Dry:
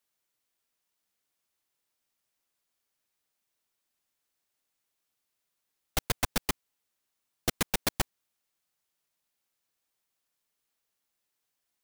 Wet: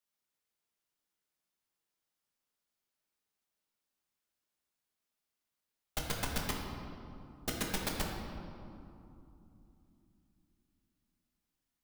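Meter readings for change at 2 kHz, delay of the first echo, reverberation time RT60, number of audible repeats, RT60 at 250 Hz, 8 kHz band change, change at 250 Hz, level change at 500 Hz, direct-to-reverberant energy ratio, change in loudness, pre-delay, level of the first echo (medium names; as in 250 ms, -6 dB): -5.0 dB, no echo, 2.9 s, no echo, 4.4 s, -6.5 dB, -2.5 dB, -4.0 dB, -1.0 dB, -6.5 dB, 5 ms, no echo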